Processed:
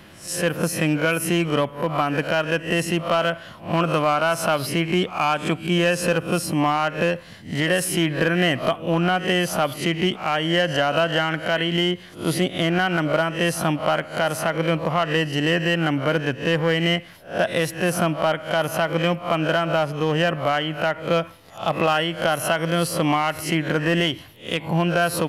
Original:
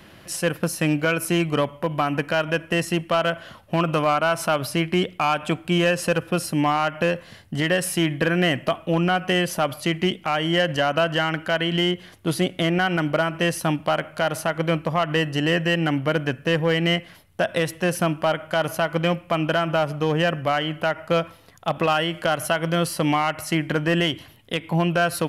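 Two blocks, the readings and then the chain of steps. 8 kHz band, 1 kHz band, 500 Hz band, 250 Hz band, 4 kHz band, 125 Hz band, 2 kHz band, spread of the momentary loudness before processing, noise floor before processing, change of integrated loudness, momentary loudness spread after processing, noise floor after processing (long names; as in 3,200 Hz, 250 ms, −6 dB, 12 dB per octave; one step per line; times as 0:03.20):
+2.0 dB, +1.0 dB, +1.0 dB, +0.5 dB, +1.0 dB, +0.5 dB, +1.0 dB, 4 LU, −48 dBFS, +1.0 dB, 4 LU, −43 dBFS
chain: peak hold with a rise ahead of every peak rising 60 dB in 0.34 s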